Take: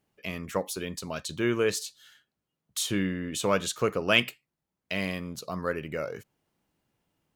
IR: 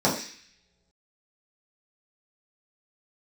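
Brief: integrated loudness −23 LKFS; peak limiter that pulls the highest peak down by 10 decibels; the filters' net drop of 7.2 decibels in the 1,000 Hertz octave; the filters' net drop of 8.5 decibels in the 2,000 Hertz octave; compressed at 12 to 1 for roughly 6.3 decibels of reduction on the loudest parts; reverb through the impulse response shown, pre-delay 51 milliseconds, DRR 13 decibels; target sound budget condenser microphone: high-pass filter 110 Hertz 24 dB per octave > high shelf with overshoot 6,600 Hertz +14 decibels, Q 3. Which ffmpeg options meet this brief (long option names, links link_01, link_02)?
-filter_complex "[0:a]equalizer=frequency=1000:width_type=o:gain=-6.5,equalizer=frequency=2000:width_type=o:gain=-7.5,acompressor=threshold=-28dB:ratio=12,alimiter=level_in=5.5dB:limit=-24dB:level=0:latency=1,volume=-5.5dB,asplit=2[link_01][link_02];[1:a]atrim=start_sample=2205,adelay=51[link_03];[link_02][link_03]afir=irnorm=-1:irlink=0,volume=-29dB[link_04];[link_01][link_04]amix=inputs=2:normalize=0,highpass=frequency=110:width=0.5412,highpass=frequency=110:width=1.3066,highshelf=frequency=6600:width_type=q:width=3:gain=14,volume=7.5dB"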